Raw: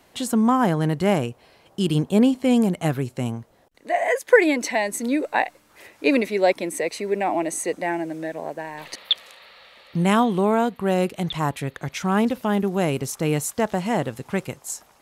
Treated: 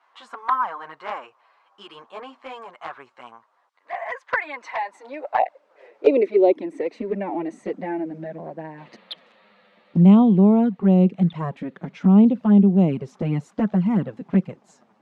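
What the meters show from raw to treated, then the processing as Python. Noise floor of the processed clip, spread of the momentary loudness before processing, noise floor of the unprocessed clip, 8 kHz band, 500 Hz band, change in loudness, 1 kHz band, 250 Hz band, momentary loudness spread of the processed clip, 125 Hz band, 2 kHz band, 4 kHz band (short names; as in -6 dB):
-63 dBFS, 12 LU, -57 dBFS, under -25 dB, -1.5 dB, +2.5 dB, -2.5 dB, +3.5 dB, 23 LU, +4.0 dB, -7.0 dB, -13.5 dB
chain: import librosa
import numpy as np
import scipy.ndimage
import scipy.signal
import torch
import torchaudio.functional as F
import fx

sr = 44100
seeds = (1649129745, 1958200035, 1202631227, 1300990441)

y = fx.dmg_noise_colour(x, sr, seeds[0], colour='violet', level_db=-56.0)
y = fx.spacing_loss(y, sr, db_at_10k=33)
y = fx.filter_sweep_highpass(y, sr, from_hz=1100.0, to_hz=190.0, start_s=4.62, end_s=7.36, q=3.7)
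y = fx.env_flanger(y, sr, rest_ms=10.5, full_db=-11.5)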